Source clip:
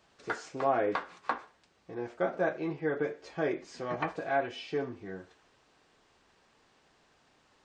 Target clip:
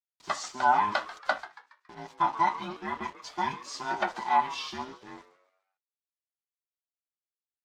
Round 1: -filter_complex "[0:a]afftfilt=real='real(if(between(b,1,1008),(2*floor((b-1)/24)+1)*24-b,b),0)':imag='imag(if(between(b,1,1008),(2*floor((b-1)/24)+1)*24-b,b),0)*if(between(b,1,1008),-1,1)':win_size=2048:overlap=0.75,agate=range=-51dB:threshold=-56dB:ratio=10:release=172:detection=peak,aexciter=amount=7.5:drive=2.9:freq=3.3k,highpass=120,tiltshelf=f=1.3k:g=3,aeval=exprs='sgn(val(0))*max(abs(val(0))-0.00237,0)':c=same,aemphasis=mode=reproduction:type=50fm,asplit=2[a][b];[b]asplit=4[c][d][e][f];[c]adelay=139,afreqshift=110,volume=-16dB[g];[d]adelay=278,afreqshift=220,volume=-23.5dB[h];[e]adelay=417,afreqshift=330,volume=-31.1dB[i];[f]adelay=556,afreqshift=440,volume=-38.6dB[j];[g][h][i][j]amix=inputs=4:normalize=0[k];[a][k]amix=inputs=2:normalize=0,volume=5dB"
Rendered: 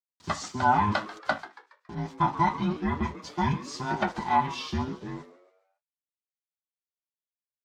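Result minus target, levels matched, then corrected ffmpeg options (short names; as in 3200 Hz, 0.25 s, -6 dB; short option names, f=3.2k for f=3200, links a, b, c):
125 Hz band +16.5 dB
-filter_complex "[0:a]afftfilt=real='real(if(between(b,1,1008),(2*floor((b-1)/24)+1)*24-b,b),0)':imag='imag(if(between(b,1,1008),(2*floor((b-1)/24)+1)*24-b,b),0)*if(between(b,1,1008),-1,1)':win_size=2048:overlap=0.75,agate=range=-51dB:threshold=-56dB:ratio=10:release=172:detection=peak,aexciter=amount=7.5:drive=2.9:freq=3.3k,highpass=440,tiltshelf=f=1.3k:g=3,aeval=exprs='sgn(val(0))*max(abs(val(0))-0.00237,0)':c=same,aemphasis=mode=reproduction:type=50fm,asplit=2[a][b];[b]asplit=4[c][d][e][f];[c]adelay=139,afreqshift=110,volume=-16dB[g];[d]adelay=278,afreqshift=220,volume=-23.5dB[h];[e]adelay=417,afreqshift=330,volume=-31.1dB[i];[f]adelay=556,afreqshift=440,volume=-38.6dB[j];[g][h][i][j]amix=inputs=4:normalize=0[k];[a][k]amix=inputs=2:normalize=0,volume=5dB"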